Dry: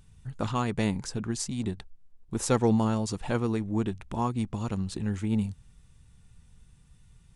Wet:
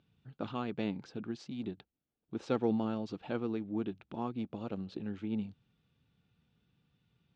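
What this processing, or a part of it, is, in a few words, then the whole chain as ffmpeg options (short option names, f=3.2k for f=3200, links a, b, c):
kitchen radio: -filter_complex "[0:a]asettb=1/sr,asplit=3[a][b][c];[a]atrim=end=4.384[d];[b]atrim=start=4.38:end=5.03,asetpts=PTS-STARTPTS,afade=t=in:d=0.004:c=qsin,afade=t=out:st=0.646:d=0.004:c=qsin,equalizer=f=550:t=o:w=0.77:g=6[e];[c]atrim=start=5.026[f];[d][e]acrossfade=d=0.004:c1=hsin:c2=qsin[g];[g][f]acrossfade=d=0.004:c1=qsin:c2=hsin,highpass=180,equalizer=f=300:t=q:w=4:g=4,equalizer=f=1k:t=q:w=4:g=-7,equalizer=f=1.9k:t=q:w=4:g=-7,lowpass=f=3.9k:w=0.5412,lowpass=f=3.9k:w=1.3066,volume=-6.5dB"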